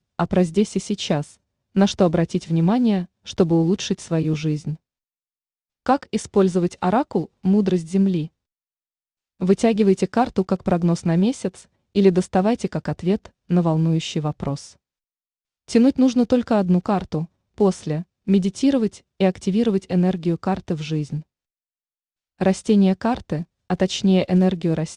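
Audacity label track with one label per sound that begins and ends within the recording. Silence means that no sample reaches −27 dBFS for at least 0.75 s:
5.860000	8.260000	sound
9.420000	14.560000	sound
15.700000	21.200000	sound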